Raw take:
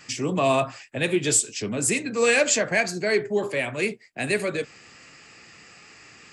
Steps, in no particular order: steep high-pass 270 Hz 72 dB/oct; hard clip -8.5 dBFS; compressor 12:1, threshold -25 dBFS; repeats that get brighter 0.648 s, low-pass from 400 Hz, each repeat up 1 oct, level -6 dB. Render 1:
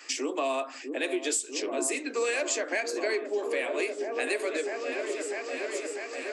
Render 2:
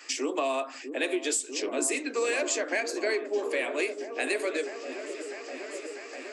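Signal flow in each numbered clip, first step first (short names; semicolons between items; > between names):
repeats that get brighter > hard clip > compressor > steep high-pass; steep high-pass > hard clip > compressor > repeats that get brighter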